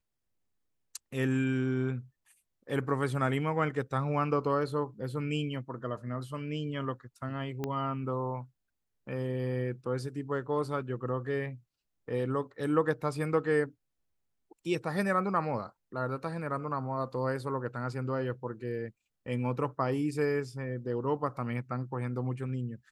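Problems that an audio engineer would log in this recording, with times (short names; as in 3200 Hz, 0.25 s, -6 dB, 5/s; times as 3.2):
7.64 pop -20 dBFS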